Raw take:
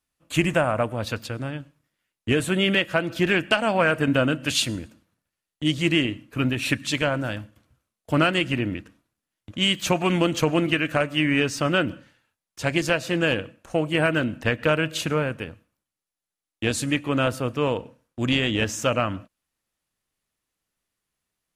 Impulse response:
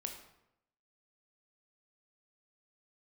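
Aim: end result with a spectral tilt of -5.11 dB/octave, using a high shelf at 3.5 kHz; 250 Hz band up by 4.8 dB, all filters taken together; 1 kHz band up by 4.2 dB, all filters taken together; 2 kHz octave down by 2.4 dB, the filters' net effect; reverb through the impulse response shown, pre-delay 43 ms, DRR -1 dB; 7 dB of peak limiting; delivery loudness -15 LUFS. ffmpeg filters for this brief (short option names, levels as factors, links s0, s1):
-filter_complex "[0:a]equalizer=f=250:t=o:g=6,equalizer=f=1000:t=o:g=7.5,equalizer=f=2000:t=o:g=-7.5,highshelf=f=3500:g=3,alimiter=limit=0.282:level=0:latency=1,asplit=2[s0][s1];[1:a]atrim=start_sample=2205,adelay=43[s2];[s1][s2]afir=irnorm=-1:irlink=0,volume=1.33[s3];[s0][s3]amix=inputs=2:normalize=0,volume=1.68"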